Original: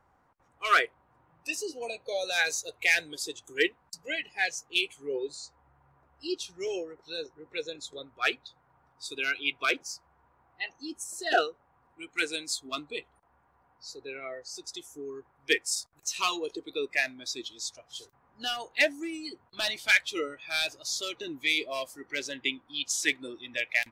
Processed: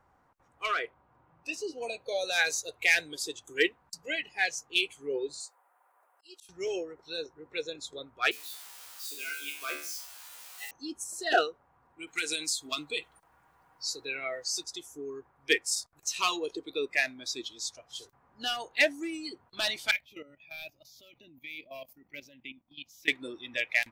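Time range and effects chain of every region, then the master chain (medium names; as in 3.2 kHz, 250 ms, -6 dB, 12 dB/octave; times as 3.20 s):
0.66–1.78 s: peaking EQ 12 kHz -13 dB 1.4 oct + band-stop 1.8 kHz, Q 18 + compression 3:1, threshold -28 dBFS
5.40–6.49 s: high-pass 540 Hz 24 dB/octave + resonant high shelf 7.4 kHz +12 dB, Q 1.5 + slow attack 330 ms
8.31–10.71 s: zero-crossing glitches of -24.5 dBFS + peaking EQ 170 Hz -9 dB 0.48 oct + feedback comb 74 Hz, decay 0.48 s, mix 90%
12.07–14.64 s: treble shelf 2.1 kHz +12 dB + comb 6.3 ms, depth 33% + compression, threshold -27 dBFS
19.91–23.08 s: FFT filter 230 Hz 0 dB, 430 Hz -16 dB, 620 Hz -4 dB, 1.1 kHz -14 dB, 1.6 kHz -18 dB, 2.4 kHz -4 dB, 4 kHz -14 dB, 5.7 kHz -14 dB, 8.6 kHz -23 dB, 15 kHz +7 dB + level held to a coarse grid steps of 14 dB
whole clip: none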